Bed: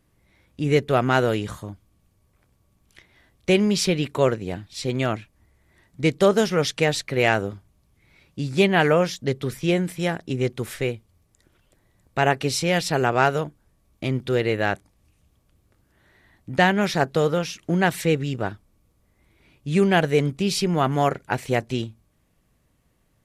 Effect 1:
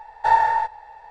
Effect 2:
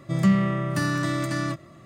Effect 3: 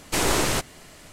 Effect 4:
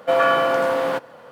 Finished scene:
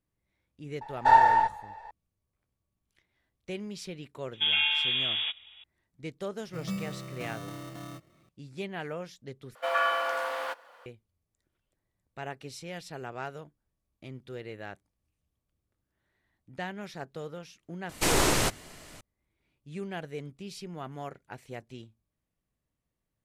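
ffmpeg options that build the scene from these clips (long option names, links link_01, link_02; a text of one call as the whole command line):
ffmpeg -i bed.wav -i cue0.wav -i cue1.wav -i cue2.wav -i cue3.wav -filter_complex "[4:a]asplit=2[link_01][link_02];[0:a]volume=-19dB[link_03];[link_01]lowpass=frequency=3300:width_type=q:width=0.5098,lowpass=frequency=3300:width_type=q:width=0.6013,lowpass=frequency=3300:width_type=q:width=0.9,lowpass=frequency=3300:width_type=q:width=2.563,afreqshift=-3900[link_04];[2:a]acrusher=samples=18:mix=1:aa=0.000001[link_05];[link_02]highpass=900[link_06];[3:a]aresample=32000,aresample=44100[link_07];[link_03]asplit=2[link_08][link_09];[link_08]atrim=end=9.554[link_10];[link_06]atrim=end=1.31,asetpts=PTS-STARTPTS,volume=-6dB[link_11];[link_09]atrim=start=10.856[link_12];[1:a]atrim=end=1.1,asetpts=PTS-STARTPTS,volume=-1.5dB,afade=type=in:duration=0.004:curve=hsin,afade=type=out:start_time=1.096:duration=0.004:curve=hsin,adelay=810[link_13];[link_04]atrim=end=1.31,asetpts=PTS-STARTPTS,volume=-9dB,afade=type=in:duration=0.004:curve=hsin,afade=type=out:start_time=1.306:duration=0.004:curve=hsin,adelay=190953S[link_14];[link_05]atrim=end=1.85,asetpts=PTS-STARTPTS,volume=-15.5dB,afade=type=in:duration=0.004:curve=hsin,afade=type=out:start_time=1.846:duration=0.004:curve=hsin,adelay=6440[link_15];[link_07]atrim=end=1.12,asetpts=PTS-STARTPTS,volume=-2dB,afade=type=in:duration=0.004:curve=hsin,afade=type=out:start_time=1.116:duration=0.004:curve=hsin,adelay=17890[link_16];[link_10][link_11]acrossfade=duration=0.004:curve1=hsin:curve2=hsin[link_17];[link_17][link_12]acrossfade=duration=0.004:curve1=hsin:curve2=hsin[link_18];[link_18][link_13][link_14][link_15][link_16]amix=inputs=5:normalize=0" out.wav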